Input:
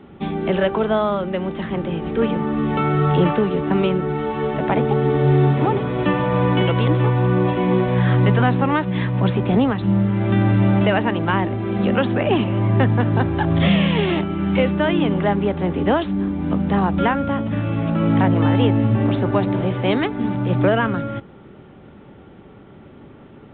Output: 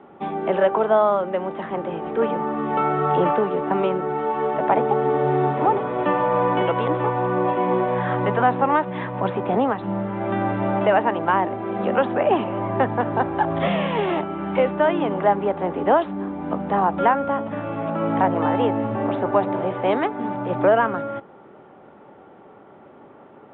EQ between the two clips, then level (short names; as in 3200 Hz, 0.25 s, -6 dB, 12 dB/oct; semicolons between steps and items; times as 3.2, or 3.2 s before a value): band-pass 800 Hz, Q 1.2; +4.5 dB